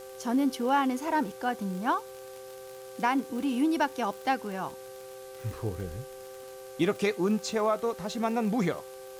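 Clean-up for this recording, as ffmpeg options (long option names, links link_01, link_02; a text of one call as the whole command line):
ffmpeg -i in.wav -af "adeclick=threshold=4,bandreject=frequency=388.9:width_type=h:width=4,bandreject=frequency=777.8:width_type=h:width=4,bandreject=frequency=1166.7:width_type=h:width=4,bandreject=frequency=1555.6:width_type=h:width=4,bandreject=frequency=520:width=30,afwtdn=0.0022" out.wav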